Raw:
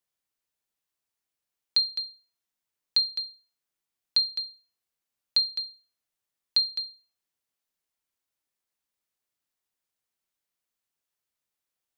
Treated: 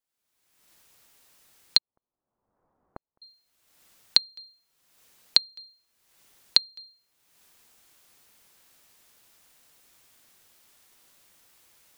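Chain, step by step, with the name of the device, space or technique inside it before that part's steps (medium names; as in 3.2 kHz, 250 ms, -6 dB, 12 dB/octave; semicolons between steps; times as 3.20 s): cheap recorder with automatic gain (white noise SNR 38 dB; recorder AGC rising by 42 dB/s); 1.78–3.22 s: inverse Chebyshev low-pass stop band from 3.6 kHz, stop band 60 dB; trim -17.5 dB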